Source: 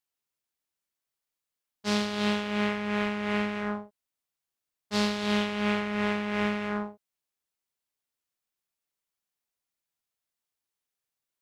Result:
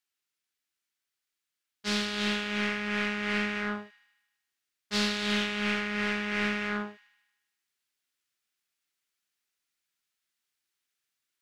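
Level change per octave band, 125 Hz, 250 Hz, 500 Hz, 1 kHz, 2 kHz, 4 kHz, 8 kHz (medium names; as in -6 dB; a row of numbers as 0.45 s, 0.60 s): -3.5 dB, -3.5 dB, -4.5 dB, -3.5 dB, +3.0 dB, +2.5 dB, +2.0 dB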